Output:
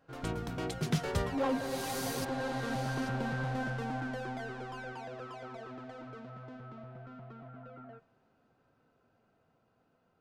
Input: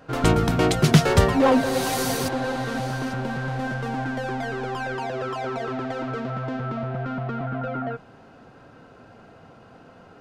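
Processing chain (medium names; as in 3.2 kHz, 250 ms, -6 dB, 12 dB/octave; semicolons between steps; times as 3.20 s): Doppler pass-by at 3.20 s, 6 m/s, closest 4.9 m; de-hum 95.81 Hz, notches 32; trim -6 dB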